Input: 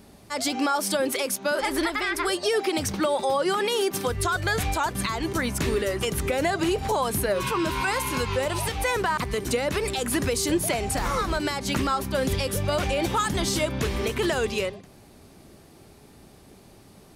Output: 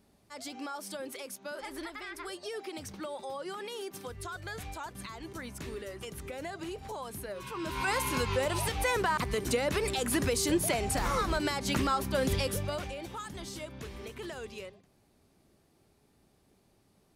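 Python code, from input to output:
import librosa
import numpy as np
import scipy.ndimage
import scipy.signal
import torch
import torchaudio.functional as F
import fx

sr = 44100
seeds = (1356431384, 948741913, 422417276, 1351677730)

y = fx.gain(x, sr, db=fx.line((7.46, -15.5), (7.91, -4.0), (12.46, -4.0), (13.02, -16.5)))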